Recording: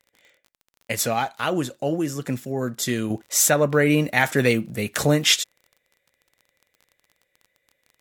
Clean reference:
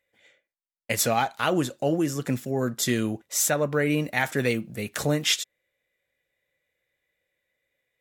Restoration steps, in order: de-click; gain correction -5.5 dB, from 3.10 s

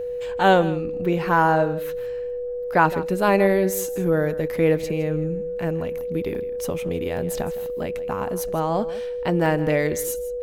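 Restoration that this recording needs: band-stop 490 Hz, Q 30; interpolate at 6.01/6.35/7.17/7.66/9.46 s, 1.2 ms; inverse comb 162 ms -16.5 dB

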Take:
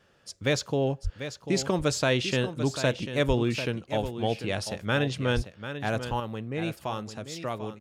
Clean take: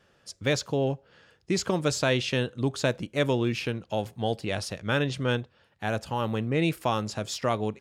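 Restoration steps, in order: de-plosive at 1.03/3.27/5.35 s; inverse comb 743 ms -10.5 dB; trim 0 dB, from 6.20 s +6.5 dB

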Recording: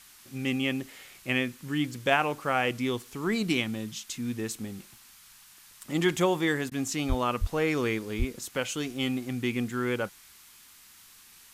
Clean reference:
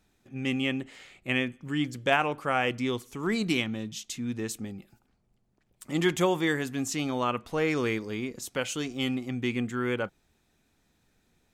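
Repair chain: de-plosive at 7.08/7.40/8.18 s; interpolate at 6.70 s, 14 ms; noise print and reduce 16 dB

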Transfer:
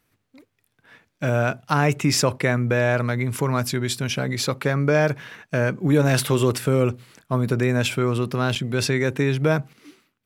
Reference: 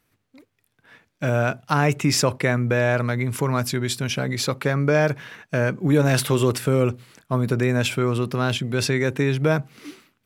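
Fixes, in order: interpolate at 5.50/8.55 s, 6.6 ms; gain correction +8 dB, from 9.73 s

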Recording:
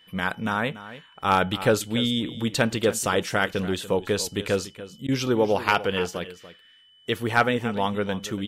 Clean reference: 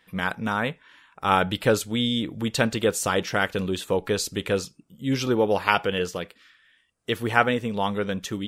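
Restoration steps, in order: clip repair -7.5 dBFS; band-stop 3 kHz, Q 30; interpolate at 5.07 s, 13 ms; inverse comb 288 ms -15 dB

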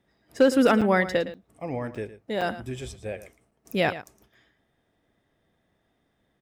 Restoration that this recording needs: clip repair -10 dBFS; interpolate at 0.81/1.34/1.95/2.41/3.51/4.05 s, 5.5 ms; inverse comb 112 ms -14 dB

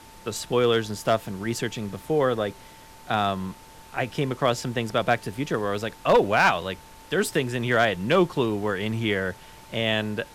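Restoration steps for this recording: clip repair -11.5 dBFS; band-stop 890 Hz, Q 30; noise reduction 22 dB, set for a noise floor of -47 dBFS

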